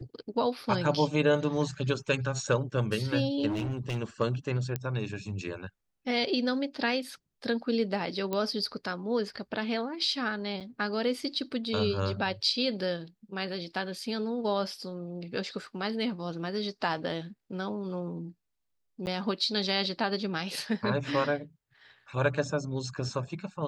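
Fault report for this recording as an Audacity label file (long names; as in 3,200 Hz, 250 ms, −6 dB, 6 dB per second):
3.480000	3.980000	clipping −28 dBFS
4.760000	4.760000	click −17 dBFS
8.330000	8.330000	click −17 dBFS
10.600000	10.610000	drop-out 7 ms
19.060000	19.070000	drop-out 9.7 ms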